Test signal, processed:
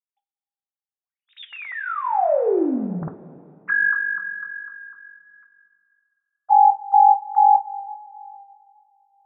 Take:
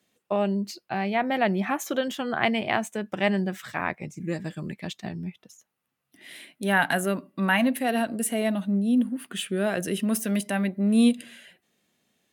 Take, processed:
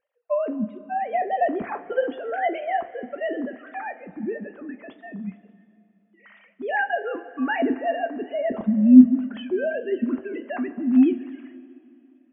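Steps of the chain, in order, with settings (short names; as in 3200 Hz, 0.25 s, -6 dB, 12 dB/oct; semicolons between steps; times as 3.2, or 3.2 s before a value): sine-wave speech; LPF 1600 Hz 12 dB/oct; two-slope reverb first 0.2 s, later 2.7 s, from -18 dB, DRR 6.5 dB; gain +1.5 dB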